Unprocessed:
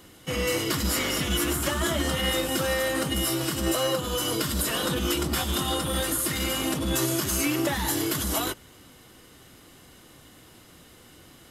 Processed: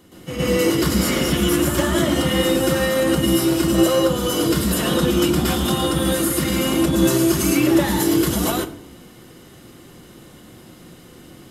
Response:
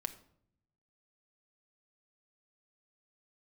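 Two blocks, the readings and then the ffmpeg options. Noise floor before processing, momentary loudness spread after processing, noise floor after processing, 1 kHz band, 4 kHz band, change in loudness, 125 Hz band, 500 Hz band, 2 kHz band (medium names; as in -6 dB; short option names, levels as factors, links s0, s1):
-52 dBFS, 3 LU, -45 dBFS, +5.5 dB, +3.5 dB, +7.5 dB, +8.5 dB, +9.5 dB, +4.0 dB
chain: -filter_complex "[0:a]equalizer=f=220:w=0.41:g=7.5,asplit=2[s0][s1];[1:a]atrim=start_sample=2205,adelay=117[s2];[s1][s2]afir=irnorm=-1:irlink=0,volume=2.51[s3];[s0][s3]amix=inputs=2:normalize=0,volume=0.596"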